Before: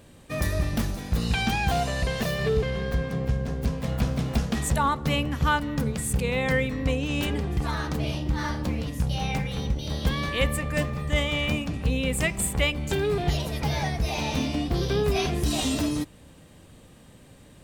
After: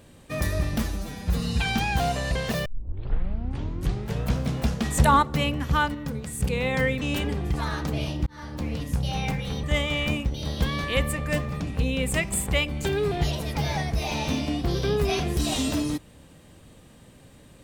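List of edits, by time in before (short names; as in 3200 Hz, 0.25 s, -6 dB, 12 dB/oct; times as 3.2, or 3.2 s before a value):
0.8–1.37 stretch 1.5×
2.37 tape start 1.72 s
4.69–4.94 gain +5.5 dB
5.66–6.12 gain -5 dB
6.73–7.08 cut
8.33–8.82 fade in
11.05–11.67 move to 9.7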